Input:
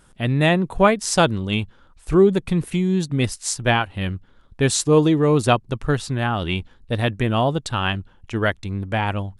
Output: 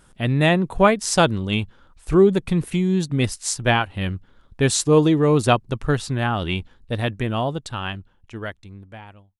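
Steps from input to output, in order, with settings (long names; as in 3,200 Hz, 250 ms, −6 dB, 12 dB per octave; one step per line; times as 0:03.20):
fade-out on the ending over 3.11 s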